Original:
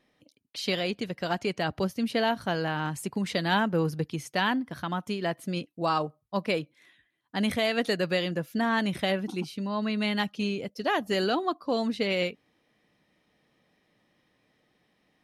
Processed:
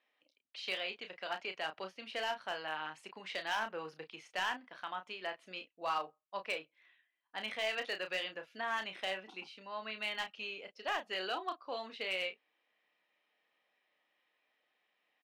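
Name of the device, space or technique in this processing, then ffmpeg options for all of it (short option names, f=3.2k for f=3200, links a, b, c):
megaphone: -filter_complex "[0:a]highpass=690,lowpass=3.6k,equalizer=f=2.7k:t=o:w=0.48:g=5,asoftclip=type=hard:threshold=-21dB,asplit=2[a][b];[b]adelay=32,volume=-8dB[c];[a][c]amix=inputs=2:normalize=0,asettb=1/sr,asplit=3[d][e][f];[d]atrim=end=6.584[g];[e]atrim=start=6.58:end=7.38,asetpts=PTS-STARTPTS,afade=t=in:d=0.004:c=qsin,afade=t=out:st=0.796:d=0.004:c=qsin,highshelf=f=5.1k:g=-9.5[h];[f]atrim=start=7.376[i];[g][h]acrossfade=d=0.004:c1=hsin:c2=qsin[j];[j][i]acrossfade=d=0.004:c1=qsin:c2=hsin,volume=-7.5dB"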